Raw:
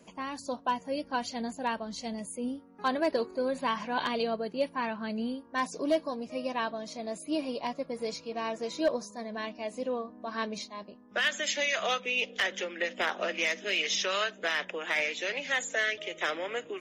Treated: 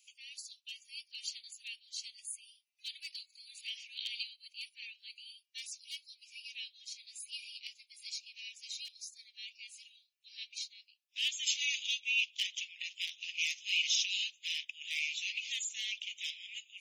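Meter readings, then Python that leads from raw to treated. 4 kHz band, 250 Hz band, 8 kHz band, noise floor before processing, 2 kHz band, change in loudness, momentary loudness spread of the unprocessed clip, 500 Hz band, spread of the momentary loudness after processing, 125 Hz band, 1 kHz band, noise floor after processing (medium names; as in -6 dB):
0.0 dB, under -40 dB, 0.0 dB, -54 dBFS, -8.0 dB, -6.0 dB, 9 LU, under -40 dB, 17 LU, under -40 dB, under -40 dB, -75 dBFS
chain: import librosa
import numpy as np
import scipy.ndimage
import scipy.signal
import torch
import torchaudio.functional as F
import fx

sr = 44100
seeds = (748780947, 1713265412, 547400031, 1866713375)

y = scipy.signal.sosfilt(scipy.signal.butter(12, 2400.0, 'highpass', fs=sr, output='sos'), x)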